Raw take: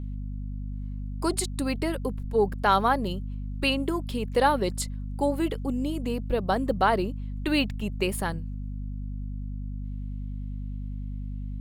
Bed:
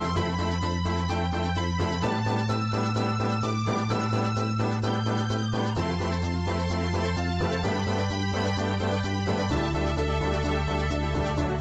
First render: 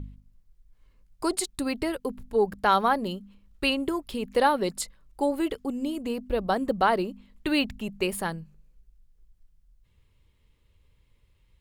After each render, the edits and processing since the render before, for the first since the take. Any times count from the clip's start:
hum removal 50 Hz, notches 5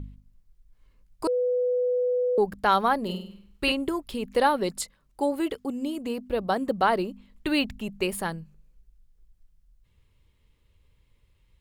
0:01.27–0:02.38: beep over 496 Hz −21.5 dBFS
0:03.03–0:03.72: flutter between parallel walls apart 8.5 metres, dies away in 0.55 s
0:04.83–0:06.84: high-pass filter 85 Hz 6 dB per octave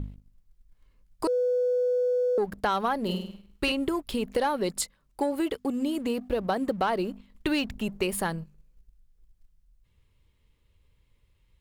leveller curve on the samples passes 1
downward compressor 4 to 1, threshold −24 dBFS, peak gain reduction 8 dB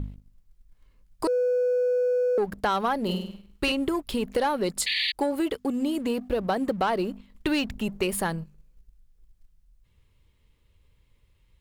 0:04.86–0:05.12: sound drawn into the spectrogram noise 1,700–4,700 Hz −28 dBFS
in parallel at −9.5 dB: soft clipping −28.5 dBFS, distortion −11 dB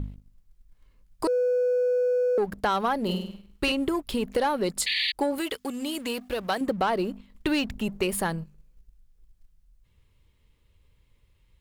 0:05.38–0:06.61: tilt shelving filter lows −7 dB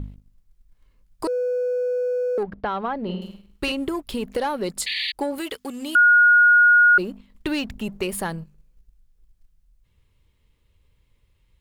0:02.43–0:03.22: high-frequency loss of the air 320 metres
0:05.95–0:06.98: beep over 1,440 Hz −10.5 dBFS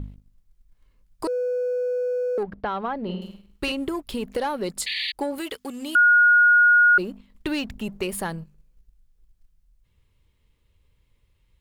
level −1.5 dB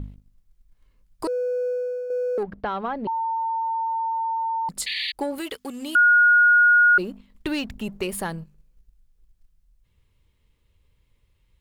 0:01.68–0:02.10: fade out, to −7 dB
0:03.07–0:04.69: beep over 904 Hz −22.5 dBFS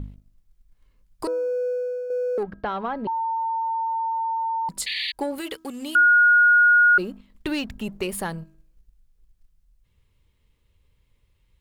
hum removal 322.9 Hz, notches 5

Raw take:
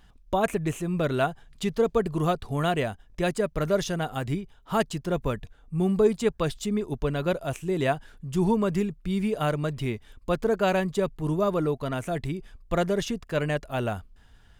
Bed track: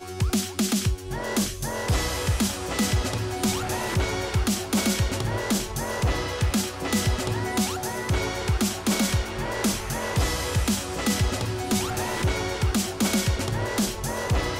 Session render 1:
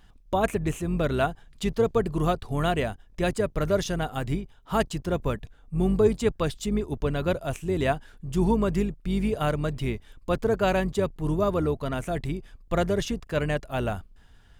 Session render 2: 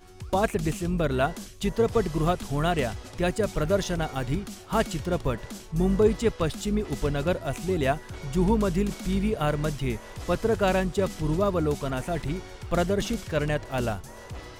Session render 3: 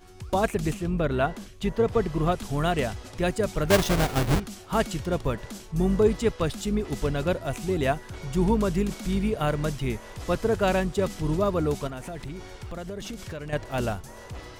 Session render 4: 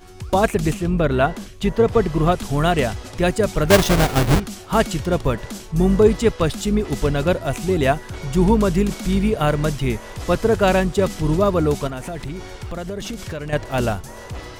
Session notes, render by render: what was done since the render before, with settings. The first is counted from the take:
sub-octave generator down 2 octaves, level −5 dB
mix in bed track −15.5 dB
0:00.74–0:02.32: bass and treble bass 0 dB, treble −8 dB; 0:03.70–0:04.40: each half-wave held at its own peak; 0:11.87–0:13.53: downward compressor, threshold −32 dBFS
level +7 dB

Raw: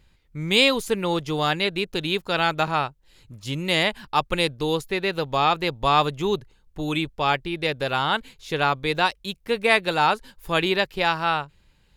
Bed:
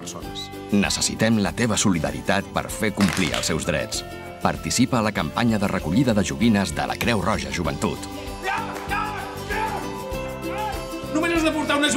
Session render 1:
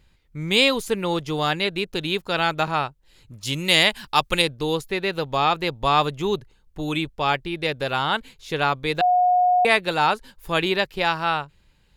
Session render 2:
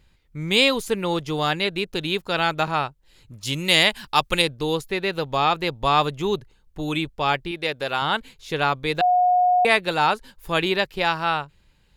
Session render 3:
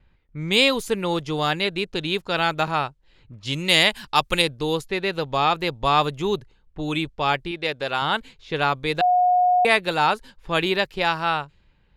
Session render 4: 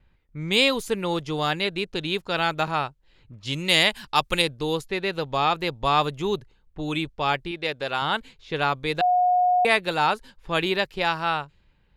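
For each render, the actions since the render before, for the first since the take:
0:03.43–0:04.42: high-shelf EQ 2,300 Hz +9.5 dB; 0:09.01–0:09.65: beep over 723 Hz −14.5 dBFS
0:07.51–0:08.02: low-shelf EQ 200 Hz −10 dB
low-pass that shuts in the quiet parts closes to 2,300 Hz, open at −19.5 dBFS; noise gate with hold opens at −56 dBFS
level −2 dB

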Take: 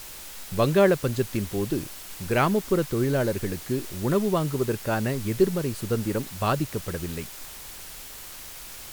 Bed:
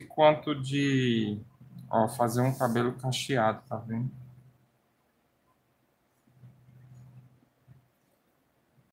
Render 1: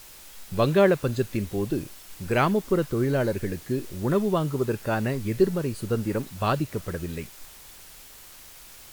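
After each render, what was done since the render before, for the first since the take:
noise reduction from a noise print 6 dB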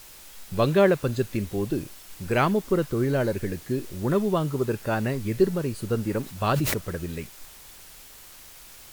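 0:06.23–0:06.74: level that may fall only so fast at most 26 dB per second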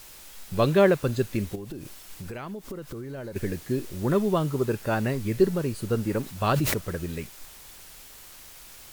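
0:01.55–0:03.36: downward compressor 10 to 1, threshold −33 dBFS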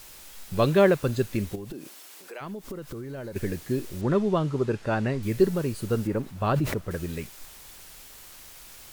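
0:01.72–0:02.40: high-pass filter 160 Hz → 450 Hz 24 dB per octave
0:04.01–0:05.23: high-frequency loss of the air 82 metres
0:06.07–0:06.91: high-shelf EQ 2,500 Hz −11 dB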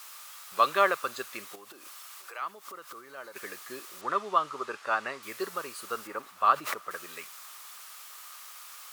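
high-pass filter 850 Hz 12 dB per octave
parametric band 1,200 Hz +13 dB 0.33 octaves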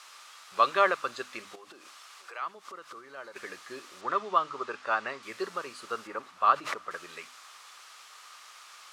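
low-pass filter 6,200 Hz 12 dB per octave
mains-hum notches 50/100/150/200/250/300 Hz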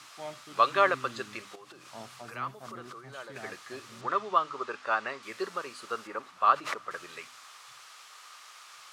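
mix in bed −20.5 dB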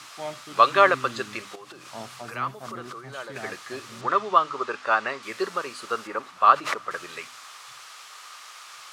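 level +6.5 dB

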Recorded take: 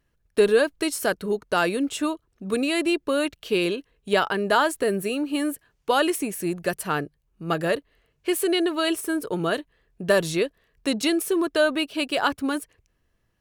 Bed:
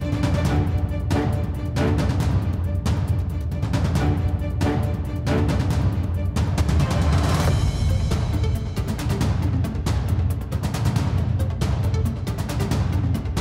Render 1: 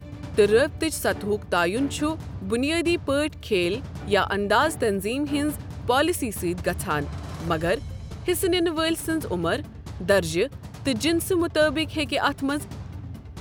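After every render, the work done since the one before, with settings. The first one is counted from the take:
mix in bed −15 dB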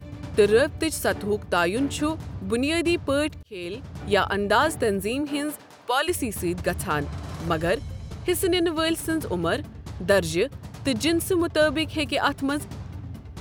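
0:03.43–0:04.07: fade in
0:05.21–0:06.07: high-pass filter 230 Hz → 800 Hz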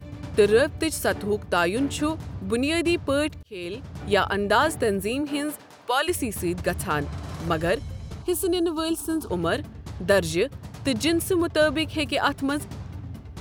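0:08.22–0:09.30: phaser with its sweep stopped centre 530 Hz, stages 6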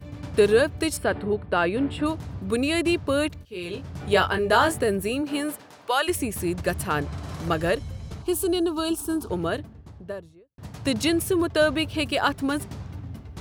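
0:00.97–0:02.06: moving average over 7 samples
0:03.39–0:04.80: double-tracking delay 22 ms −6 dB
0:09.06–0:10.58: fade out and dull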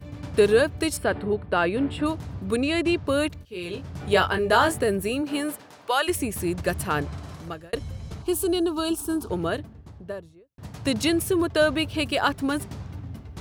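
0:02.56–0:03.05: high-frequency loss of the air 53 metres
0:07.03–0:07.73: fade out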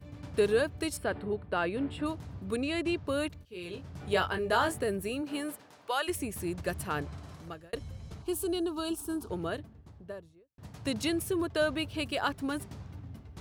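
level −8 dB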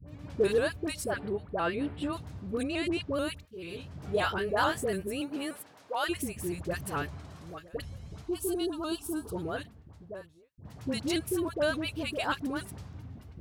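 all-pass dispersion highs, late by 71 ms, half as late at 890 Hz
pitch modulation by a square or saw wave saw up 6.9 Hz, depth 100 cents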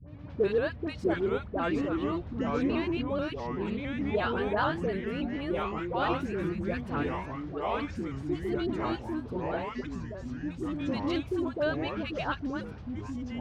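delay with pitch and tempo change per echo 572 ms, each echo −3 semitones, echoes 3
high-frequency loss of the air 230 metres

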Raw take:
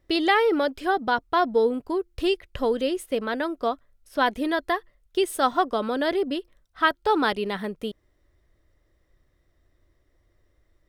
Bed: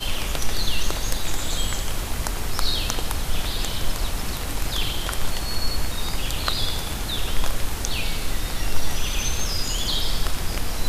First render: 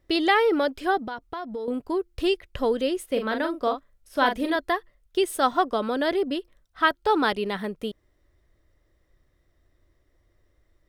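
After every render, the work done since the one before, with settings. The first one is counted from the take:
0:01.03–0:01.68: downward compressor, threshold −30 dBFS
0:03.12–0:04.56: double-tracking delay 41 ms −6.5 dB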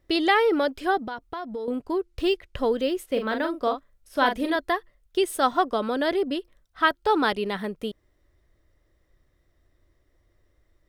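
0:01.71–0:03.48: linearly interpolated sample-rate reduction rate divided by 2×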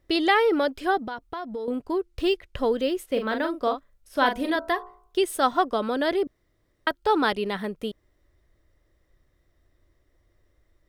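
0:04.29–0:05.18: hum removal 60.1 Hz, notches 26
0:06.27–0:06.87: fill with room tone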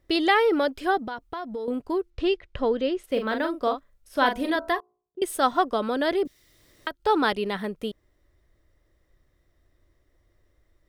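0:02.10–0:03.04: high-frequency loss of the air 110 metres
0:04.80–0:05.22: four-pole ladder band-pass 220 Hz, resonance 25%
0:06.25–0:07.00: multiband upward and downward compressor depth 70%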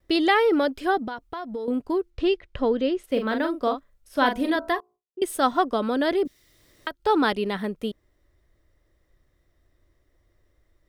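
noise gate with hold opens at −59 dBFS
dynamic equaliser 250 Hz, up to +4 dB, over −37 dBFS, Q 1.5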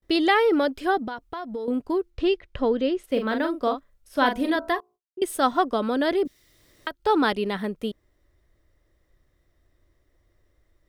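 noise gate with hold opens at −60 dBFS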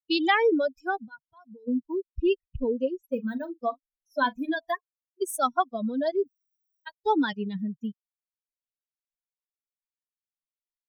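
spectral dynamics exaggerated over time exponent 3
in parallel at +1 dB: downward compressor, threshold −36 dBFS, peak gain reduction 16 dB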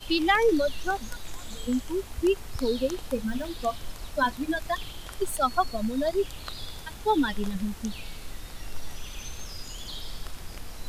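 mix in bed −14 dB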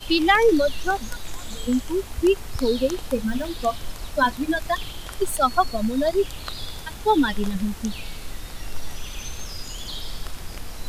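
level +5 dB

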